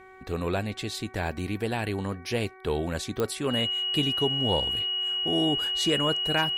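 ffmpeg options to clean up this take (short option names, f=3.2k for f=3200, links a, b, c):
-af "adeclick=t=4,bandreject=f=376.6:t=h:w=4,bandreject=f=753.2:t=h:w=4,bandreject=f=1.1298k:t=h:w=4,bandreject=f=1.5064k:t=h:w=4,bandreject=f=1.883k:t=h:w=4,bandreject=f=2.2596k:t=h:w=4,bandreject=f=2.9k:w=30"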